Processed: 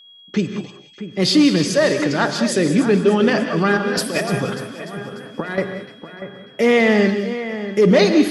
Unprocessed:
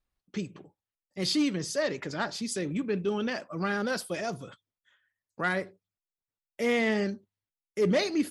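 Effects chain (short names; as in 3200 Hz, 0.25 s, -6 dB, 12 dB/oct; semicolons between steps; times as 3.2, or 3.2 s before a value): HPF 110 Hz; high shelf 5300 Hz -8.5 dB; notch 2200 Hz, Q 27; in parallel at +3 dB: limiter -22.5 dBFS, peak gain reduction 7.5 dB; 3.77–5.58 on the sum: negative-ratio compressor -29 dBFS, ratio -0.5; whine 3300 Hz -51 dBFS; split-band echo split 2400 Hz, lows 0.64 s, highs 0.296 s, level -11.5 dB; non-linear reverb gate 0.22 s rising, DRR 8 dB; gain +7 dB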